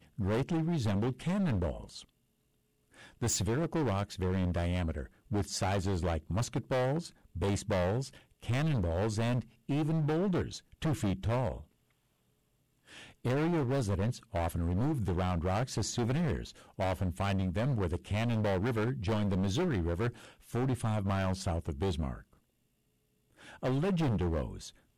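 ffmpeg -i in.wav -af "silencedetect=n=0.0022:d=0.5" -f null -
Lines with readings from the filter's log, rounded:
silence_start: 2.05
silence_end: 2.94 | silence_duration: 0.90
silence_start: 11.64
silence_end: 12.88 | silence_duration: 1.24
silence_start: 22.33
silence_end: 23.38 | silence_duration: 1.04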